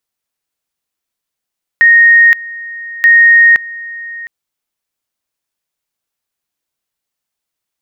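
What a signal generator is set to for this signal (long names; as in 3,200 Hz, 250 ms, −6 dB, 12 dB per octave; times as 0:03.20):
tone at two levels in turn 1,860 Hz −2.5 dBFS, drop 20 dB, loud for 0.52 s, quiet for 0.71 s, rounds 2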